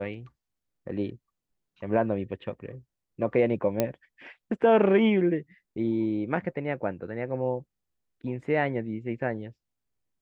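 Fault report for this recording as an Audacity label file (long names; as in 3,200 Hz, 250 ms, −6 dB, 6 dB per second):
3.800000	3.800000	click −10 dBFS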